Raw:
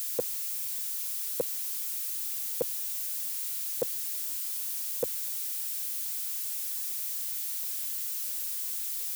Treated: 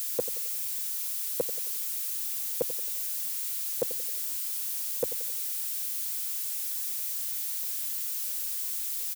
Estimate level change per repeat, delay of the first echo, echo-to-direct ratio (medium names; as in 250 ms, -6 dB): -7.0 dB, 89 ms, -13.0 dB